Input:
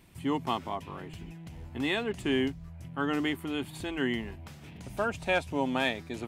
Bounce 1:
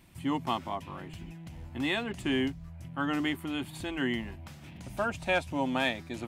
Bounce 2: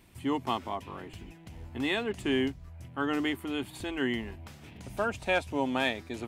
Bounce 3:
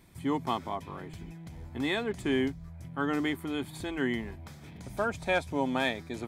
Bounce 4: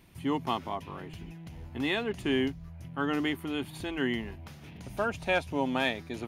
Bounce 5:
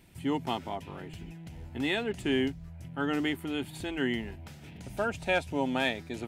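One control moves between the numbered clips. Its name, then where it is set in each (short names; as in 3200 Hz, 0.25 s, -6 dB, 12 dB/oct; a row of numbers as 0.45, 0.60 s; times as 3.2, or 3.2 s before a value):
notch, frequency: 430, 160, 2800, 7800, 1100 Hz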